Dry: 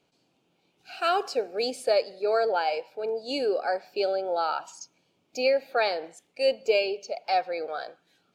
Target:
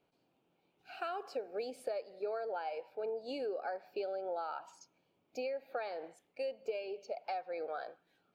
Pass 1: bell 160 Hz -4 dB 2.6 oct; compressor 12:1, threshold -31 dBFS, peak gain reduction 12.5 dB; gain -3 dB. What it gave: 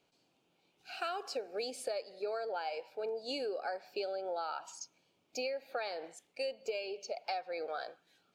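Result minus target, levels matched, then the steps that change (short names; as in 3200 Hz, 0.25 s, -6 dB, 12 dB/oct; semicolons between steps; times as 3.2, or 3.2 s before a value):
8000 Hz band +11.5 dB
add after compressor: bell 6800 Hz -13.5 dB 2.3 oct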